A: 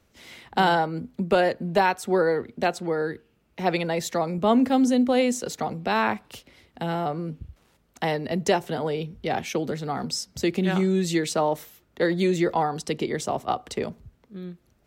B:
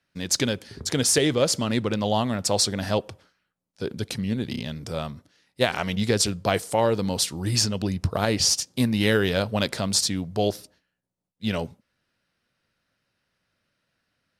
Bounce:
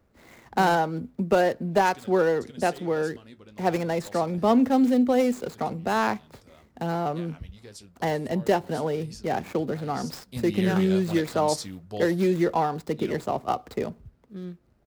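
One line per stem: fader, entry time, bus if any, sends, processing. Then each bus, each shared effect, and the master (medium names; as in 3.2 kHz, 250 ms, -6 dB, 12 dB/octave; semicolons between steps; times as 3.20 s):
0.0 dB, 0.00 s, no send, median filter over 15 samples
10.17 s -20 dB -> 10.38 s -8 dB, 1.55 s, no send, flange 0.26 Hz, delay 4.9 ms, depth 7.9 ms, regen -52%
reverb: none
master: treble shelf 10 kHz +4.5 dB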